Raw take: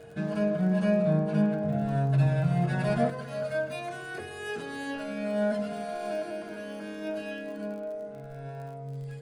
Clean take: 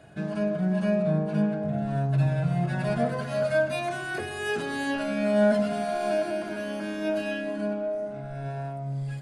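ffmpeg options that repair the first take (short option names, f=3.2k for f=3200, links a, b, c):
-af "adeclick=t=4,bandreject=f=460:w=30,asetnsamples=n=441:p=0,asendcmd='3.1 volume volume 6.5dB',volume=0dB"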